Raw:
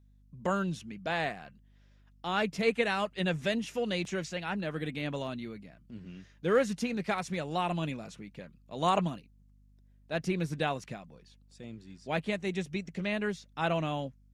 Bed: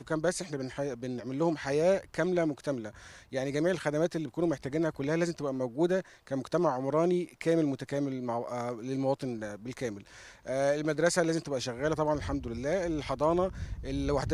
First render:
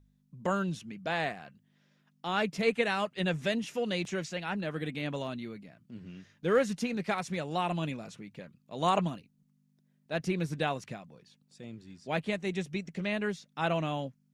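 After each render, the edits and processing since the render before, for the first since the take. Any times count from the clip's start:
hum removal 50 Hz, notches 2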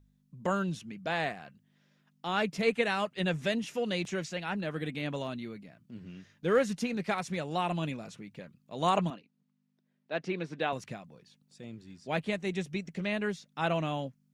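0:09.10–0:10.73: band-pass filter 250–4,000 Hz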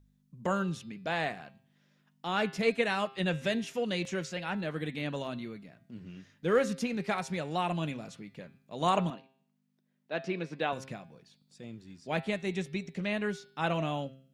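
hum removal 133.3 Hz, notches 39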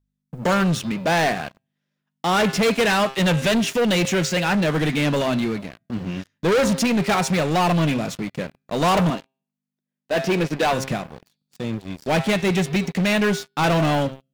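leveller curve on the samples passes 5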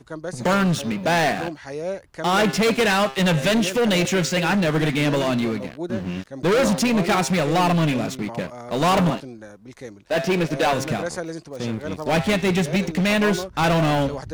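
mix in bed −2.5 dB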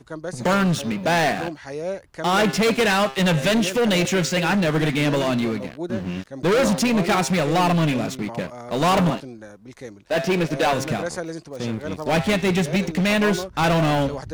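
no processing that can be heard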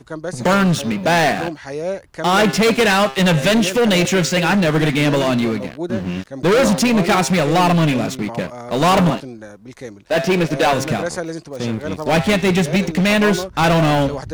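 level +4.5 dB

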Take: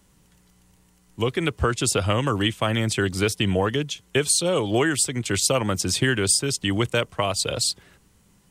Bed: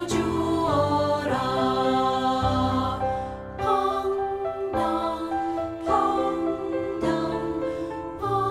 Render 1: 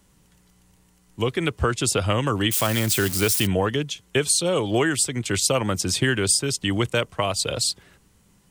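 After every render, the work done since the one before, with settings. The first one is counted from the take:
0:02.51–0:03.47: spike at every zero crossing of −17.5 dBFS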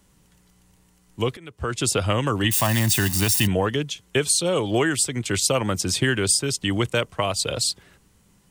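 0:01.37–0:01.79: fade in quadratic, from −20.5 dB
0:02.44–0:03.48: comb filter 1.1 ms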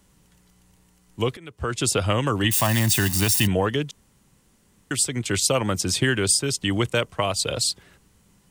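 0:03.91–0:04.91: fill with room tone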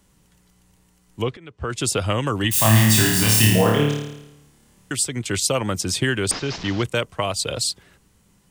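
0:01.22–0:01.70: high-frequency loss of the air 110 metres
0:02.52–0:04.92: flutter between parallel walls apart 4.7 metres, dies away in 0.89 s
0:06.31–0:06.83: linear delta modulator 32 kbit/s, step −28.5 dBFS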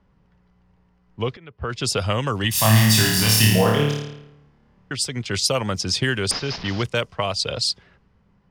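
low-pass that shuts in the quiet parts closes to 1,600 Hz, open at −16.5 dBFS
thirty-one-band graphic EQ 315 Hz −7 dB, 5,000 Hz +7 dB, 8,000 Hz −5 dB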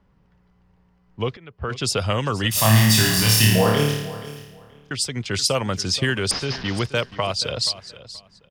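repeating echo 478 ms, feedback 21%, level −16 dB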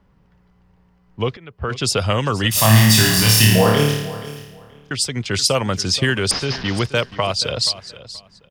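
level +3.5 dB
brickwall limiter −1 dBFS, peak gain reduction 1 dB

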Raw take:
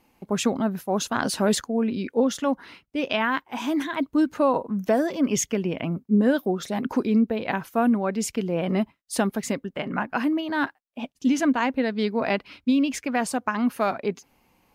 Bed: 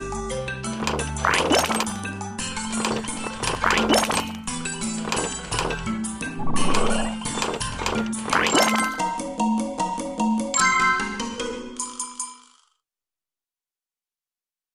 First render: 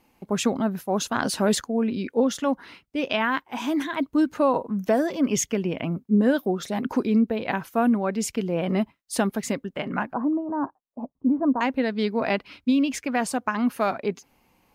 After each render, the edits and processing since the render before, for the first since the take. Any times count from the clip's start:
0:10.13–0:11.61: Chebyshev low-pass filter 1,100 Hz, order 4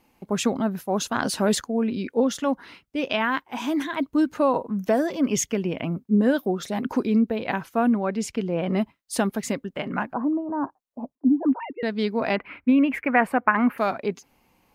0:07.62–0:08.75: high-shelf EQ 12,000 Hz → 6,500 Hz −11 dB
0:11.15–0:11.83: three sine waves on the formant tracks
0:12.36–0:13.78: drawn EQ curve 120 Hz 0 dB, 2,200 Hz +9 dB, 3,600 Hz −13 dB, 6,100 Hz −26 dB, 13,000 Hz −5 dB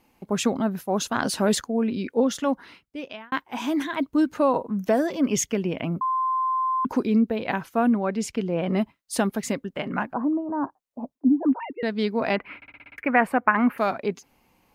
0:02.51–0:03.32: fade out
0:06.01–0:06.85: beep over 1,040 Hz −21 dBFS
0:12.56: stutter in place 0.06 s, 7 plays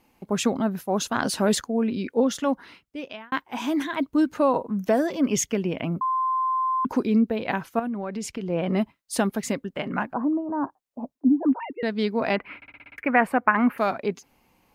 0:07.79–0:08.50: downward compressor 10 to 1, threshold −26 dBFS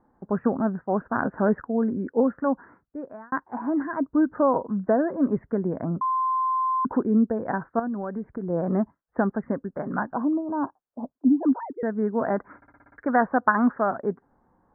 Butterworth low-pass 1,700 Hz 72 dB per octave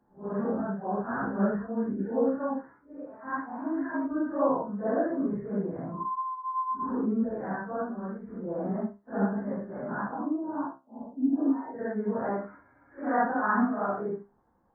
random phases in long frames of 200 ms
tuned comb filter 67 Hz, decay 0.25 s, harmonics all, mix 70%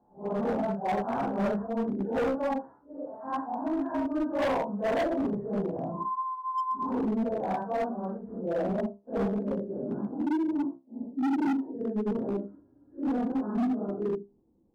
low-pass filter sweep 780 Hz → 340 Hz, 0:08.13–0:10.20
hard clipping −24.5 dBFS, distortion −7 dB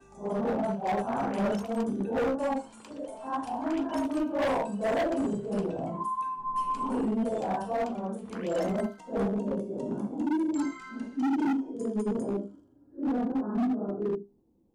mix in bed −26 dB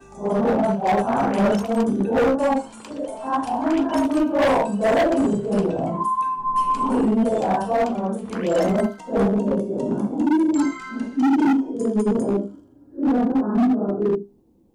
level +9.5 dB

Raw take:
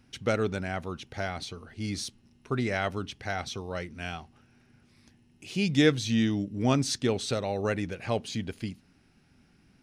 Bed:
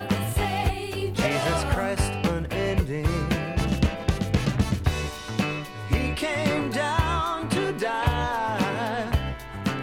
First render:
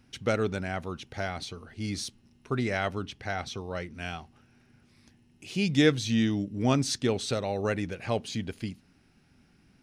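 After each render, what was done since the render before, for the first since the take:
0:02.90–0:03.94: high-shelf EQ 5,500 Hz −4.5 dB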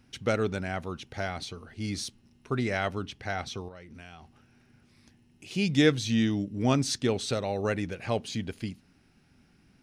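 0:03.68–0:05.51: downward compressor, threshold −43 dBFS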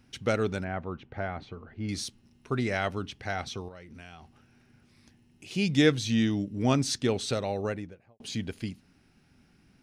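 0:00.64–0:01.89: low-pass filter 1,800 Hz
0:07.42–0:08.20: fade out and dull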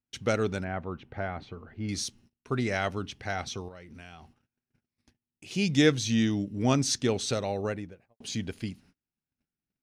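noise gate −56 dBFS, range −32 dB
dynamic equaliser 6,200 Hz, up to +5 dB, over −53 dBFS, Q 2.7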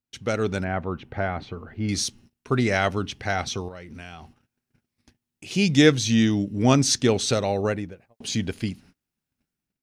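automatic gain control gain up to 7 dB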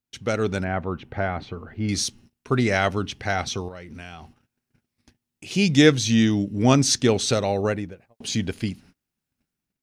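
level +1 dB

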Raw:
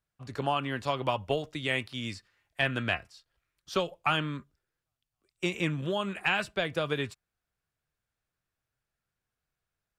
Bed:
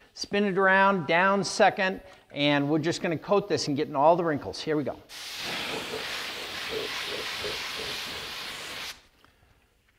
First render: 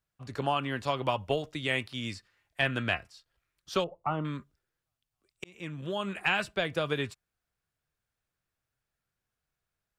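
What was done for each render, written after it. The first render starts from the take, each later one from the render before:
0:03.84–0:04.25: Savitzky-Golay smoothing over 65 samples
0:05.44–0:06.14: fade in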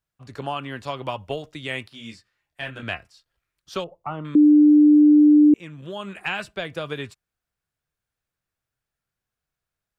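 0:01.89–0:02.83: micro pitch shift up and down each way 19 cents
0:04.35–0:05.54: beep over 298 Hz −9.5 dBFS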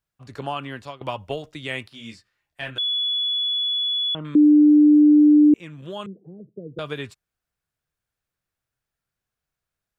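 0:00.61–0:01.01: fade out equal-power, to −19 dB
0:02.78–0:04.15: beep over 3,410 Hz −20.5 dBFS
0:06.06–0:06.79: Chebyshev band-pass filter 120–480 Hz, order 4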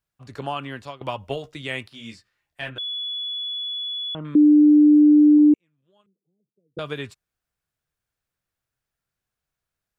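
0:01.22–0:01.62: double-tracking delay 15 ms −9 dB
0:02.69–0:04.64: high-shelf EQ 3,400 Hz −11.5 dB
0:05.38–0:06.77: expander for the loud parts 2.5 to 1, over −34 dBFS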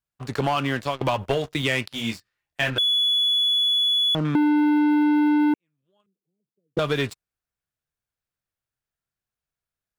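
leveller curve on the samples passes 3
downward compressor, threshold −19 dBFS, peak gain reduction 7.5 dB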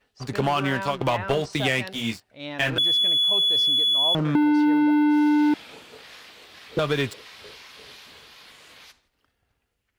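mix in bed −11.5 dB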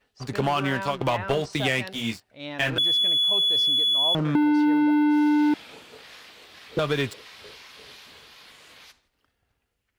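level −1 dB

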